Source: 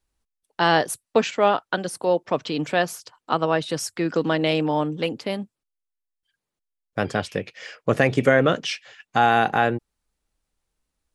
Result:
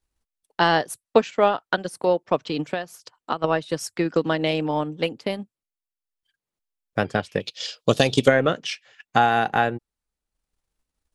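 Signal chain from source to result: 2.61–3.44 compressor 4:1, threshold -24 dBFS, peak gain reduction 8.5 dB; 7.4–8.28 resonant high shelf 2700 Hz +10.5 dB, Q 3; transient shaper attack +5 dB, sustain -6 dB; gain -2 dB

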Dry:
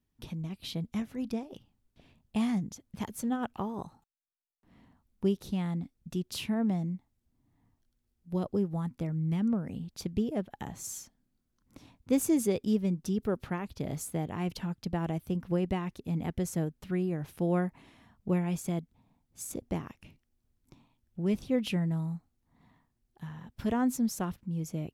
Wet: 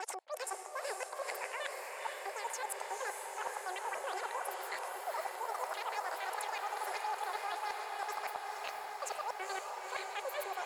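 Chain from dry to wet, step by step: slices in reverse order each 0.22 s, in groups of 3; gate -58 dBFS, range -22 dB; elliptic band-pass 320–4600 Hz, stop band 70 dB; notch 2500 Hz, Q 12; limiter -27.5 dBFS, peak gain reduction 8 dB; reverse; compressor 12:1, threshold -47 dBFS, peak gain reduction 16.5 dB; reverse; tempo 1×; low-pass opened by the level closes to 750 Hz, open at -48 dBFS; on a send: diffused feedback echo 1.112 s, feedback 76%, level -4 dB; on the sum: speed mistake 33 rpm record played at 78 rpm; gain +10.5 dB

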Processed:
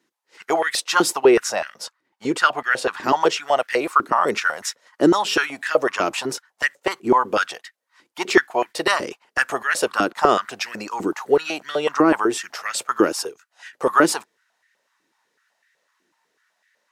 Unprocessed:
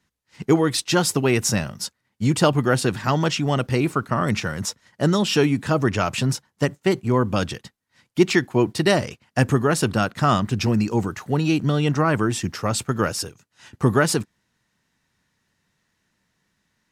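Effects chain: 1.18–3.03 high shelf 6800 Hz -9.5 dB; stepped high-pass 8 Hz 330–1800 Hz

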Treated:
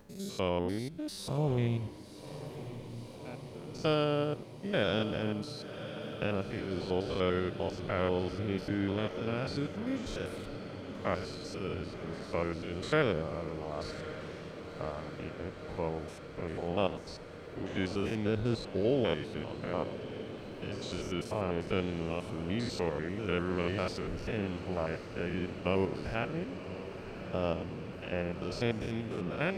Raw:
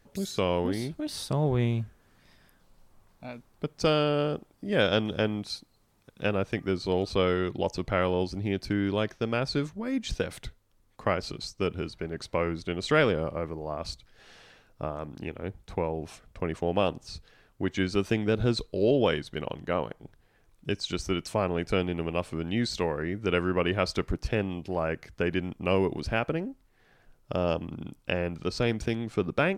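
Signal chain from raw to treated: stepped spectrum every 0.1 s; gate with hold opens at -56 dBFS; upward compressor, threshold -47 dBFS; on a send: diffused feedback echo 1.082 s, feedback 78%, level -12 dB; on the sum: gain -4 dB

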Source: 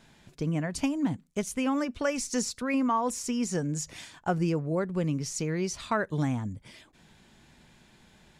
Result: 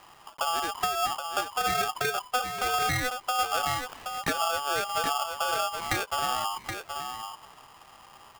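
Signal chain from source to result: block floating point 5-bit; LPF 1500 Hz 24 dB/oct; compressor 3:1, threshold -34 dBFS, peak gain reduction 9 dB; on a send: echo 0.774 s -7 dB; on the sum: polarity switched at an audio rate 1000 Hz; gain +6.5 dB

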